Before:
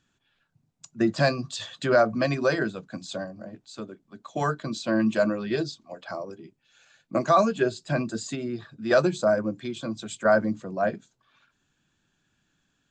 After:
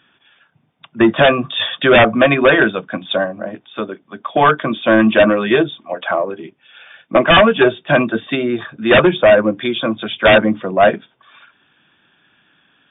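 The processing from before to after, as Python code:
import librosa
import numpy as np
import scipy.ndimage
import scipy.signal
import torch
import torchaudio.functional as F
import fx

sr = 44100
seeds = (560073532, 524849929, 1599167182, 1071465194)

y = fx.highpass(x, sr, hz=540.0, slope=6)
y = fx.fold_sine(y, sr, drive_db=10, ceiling_db=-10.0)
y = fx.brickwall_lowpass(y, sr, high_hz=3700.0)
y = F.gain(torch.from_numpy(y), 5.5).numpy()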